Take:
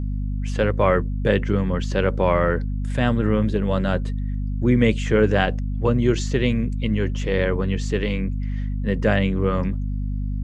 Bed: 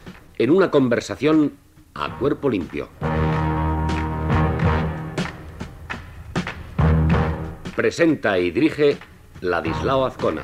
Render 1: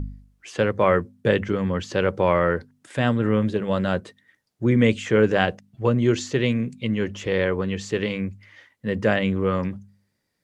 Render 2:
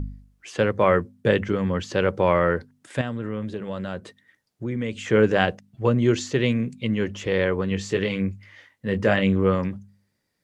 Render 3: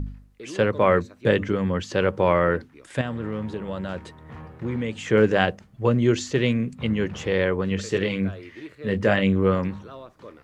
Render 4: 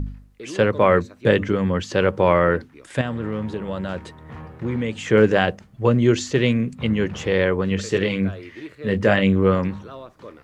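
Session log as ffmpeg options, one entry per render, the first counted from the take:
-af "bandreject=f=50:t=h:w=4,bandreject=f=100:t=h:w=4,bandreject=f=150:t=h:w=4,bandreject=f=200:t=h:w=4,bandreject=f=250:t=h:w=4"
-filter_complex "[0:a]asettb=1/sr,asplit=3[s0][s1][s2];[s0]atrim=end=3.014[s3];[s1]atrim=start=3.01:end=5.08,asetpts=PTS-STARTPTS,afade=t=in:d=0.004:c=qsin,afade=t=out:st=2.066:d=0.004:c=qsin,acompressor=threshold=0.0251:ratio=2:attack=3.2:release=140:knee=1:detection=peak[s4];[s2]atrim=start=5.076[s5];[s3][s4]acrossfade=d=0.004:c1=hsin:c2=qsin[s6];[s6][s5]acrossfade=d=0.004:c1=qsin:c2=hsin,asettb=1/sr,asplit=3[s7][s8][s9];[s7]atrim=end=7.694[s10];[s8]atrim=start=7.69:end=9.55,asetpts=PTS-STARTPTS,afade=t=in:d=0.004:c=qsin,afade=t=out:st=1.856:d=0.004:c=qsin,asplit=2[s11][s12];[s12]adelay=21,volume=0.422[s13];[s11][s13]amix=inputs=2:normalize=0,atrim=end_sample=82026[s14];[s9]atrim=start=9.546[s15];[s10][s14]acrossfade=d=0.004:c1=hsin:c2=qsin[s16];[s16][s15]acrossfade=d=0.004:c1=qsin:c2=hsin"
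-filter_complex "[1:a]volume=0.0794[s0];[0:a][s0]amix=inputs=2:normalize=0"
-af "volume=1.41,alimiter=limit=0.708:level=0:latency=1"

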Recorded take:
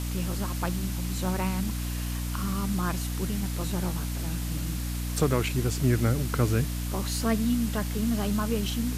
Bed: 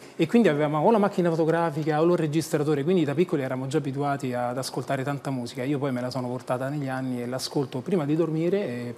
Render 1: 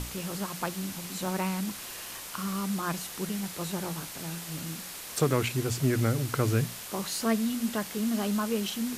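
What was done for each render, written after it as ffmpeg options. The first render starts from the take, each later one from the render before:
-af "bandreject=f=60:t=h:w=6,bandreject=f=120:t=h:w=6,bandreject=f=180:t=h:w=6,bandreject=f=240:t=h:w=6,bandreject=f=300:t=h:w=6"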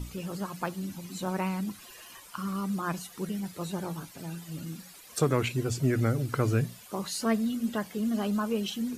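-af "afftdn=nr=14:nf=-41"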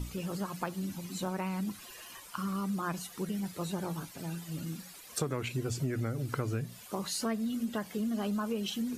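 -af "acompressor=threshold=0.0316:ratio=5"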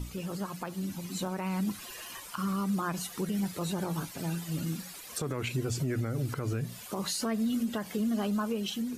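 -af "dynaudnorm=f=330:g=7:m=1.78,alimiter=limit=0.0708:level=0:latency=1:release=90"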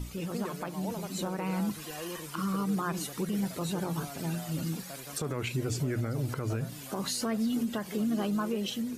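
-filter_complex "[1:a]volume=0.106[s0];[0:a][s0]amix=inputs=2:normalize=0"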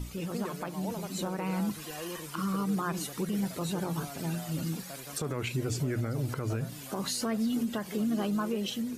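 -af anull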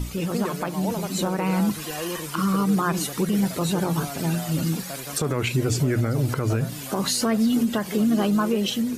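-af "volume=2.82"

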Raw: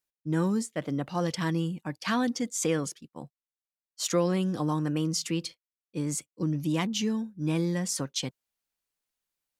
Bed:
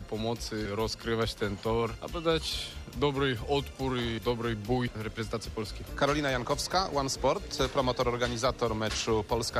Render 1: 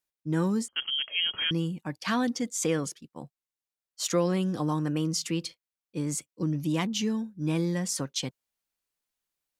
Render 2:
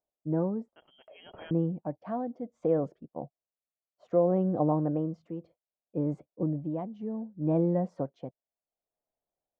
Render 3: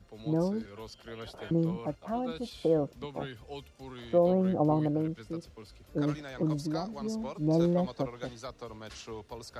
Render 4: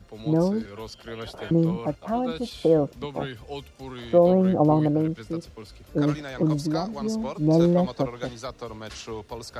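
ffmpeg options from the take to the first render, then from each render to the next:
-filter_complex "[0:a]asettb=1/sr,asplit=3[s0][s1][s2];[s0]atrim=end=0.684[s3];[s1]atrim=start=0.68:end=1.51,asetpts=PTS-STARTPTS,afade=t=in:d=0.004:c=qsin,afade=t=out:st=0.826:d=0.004:c=qsin,lowpass=f=2900:t=q:w=0.5098,lowpass=f=2900:t=q:w=0.6013,lowpass=f=2900:t=q:w=0.9,lowpass=f=2900:t=q:w=2.563,afreqshift=-3400[s4];[s2]atrim=start=1.506[s5];[s3][s4]acrossfade=d=0.004:c1=hsin:c2=qsin[s6];[s6][s5]acrossfade=d=0.004:c1=qsin:c2=hsin"
-af "lowpass=f=660:t=q:w=4,tremolo=f=0.65:d=0.69"
-filter_complex "[1:a]volume=0.2[s0];[0:a][s0]amix=inputs=2:normalize=0"
-af "volume=2.24"

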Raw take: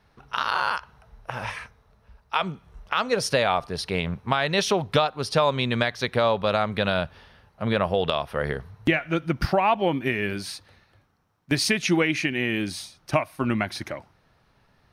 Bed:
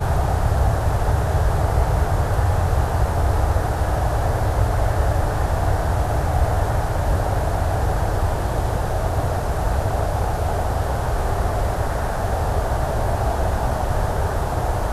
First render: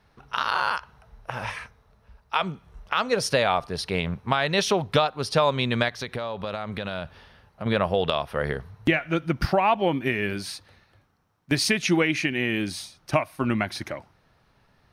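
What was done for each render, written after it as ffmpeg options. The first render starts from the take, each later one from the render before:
-filter_complex "[0:a]asettb=1/sr,asplit=3[s0][s1][s2];[s0]atrim=end=5.884[s3];[s1]atrim=start=5.88:end=7.66,asetpts=PTS-STARTPTS,afade=t=in:d=0.004:c=qsin,afade=t=out:st=1.776:d=0.004:c=qsin,acompressor=threshold=0.0447:ratio=6:attack=3.2:release=140:knee=1:detection=peak[s4];[s2]atrim=start=7.656[s5];[s3][s4]acrossfade=d=0.004:c1=hsin:c2=qsin[s6];[s6][s5]acrossfade=d=0.004:c1=qsin:c2=hsin"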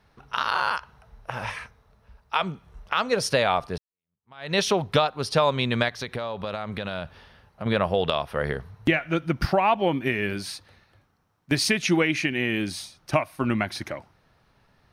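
-filter_complex "[0:a]asplit=2[s0][s1];[s0]atrim=end=3.78,asetpts=PTS-STARTPTS,afade=t=out:st=3.776:d=0.004:c=hsin[s2];[s1]atrim=start=3.78,asetpts=PTS-STARTPTS,afade=t=in:d=0.75:c=exp[s3];[s2][s3]concat=n=2:v=0:a=1"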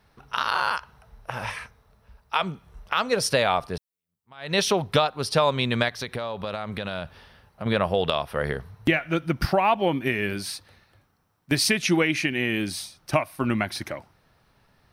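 -af "highshelf=f=8600:g=8,bandreject=f=6600:w=22"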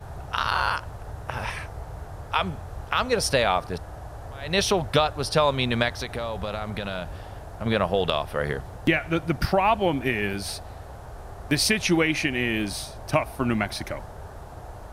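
-filter_complex "[1:a]volume=0.119[s0];[0:a][s0]amix=inputs=2:normalize=0"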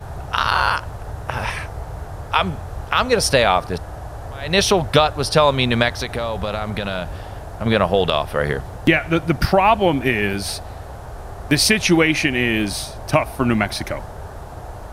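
-af "volume=2.11,alimiter=limit=0.891:level=0:latency=1"

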